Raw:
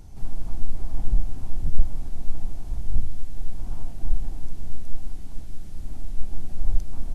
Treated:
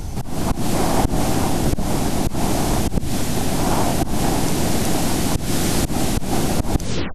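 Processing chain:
turntable brake at the end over 0.34 s
low-shelf EQ 200 Hz −4 dB
automatic gain control gain up to 14 dB
volume swells 170 ms
every bin compressed towards the loudest bin 4 to 1

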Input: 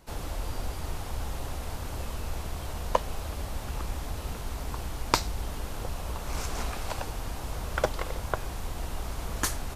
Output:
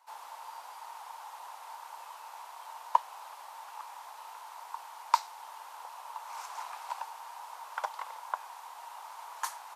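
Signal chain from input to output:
four-pole ladder high-pass 860 Hz, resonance 75%
level +1.5 dB

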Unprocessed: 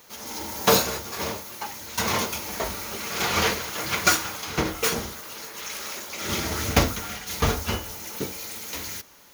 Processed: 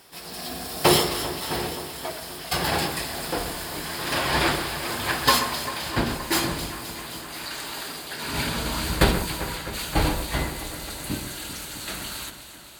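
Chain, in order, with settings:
gliding playback speed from 80% → 66%
delay that swaps between a low-pass and a high-pass 131 ms, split 2,300 Hz, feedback 83%, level −10 dB

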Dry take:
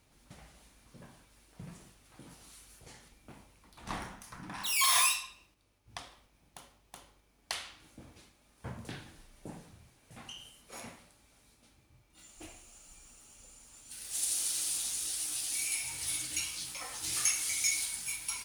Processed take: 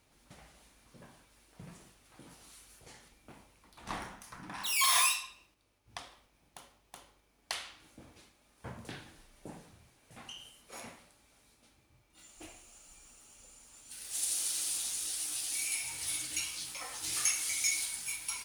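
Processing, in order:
bass and treble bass −4 dB, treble −1 dB

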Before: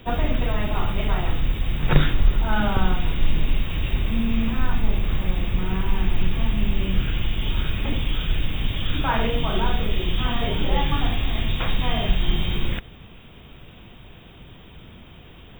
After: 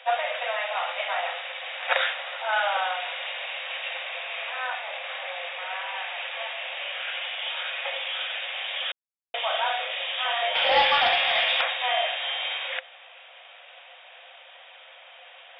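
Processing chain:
Chebyshev high-pass with heavy ripple 510 Hz, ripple 6 dB
0:10.55–0:11.61: leveller curve on the samples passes 2
downsampling to 11,025 Hz
0:08.92–0:09.34: silence
level +6 dB

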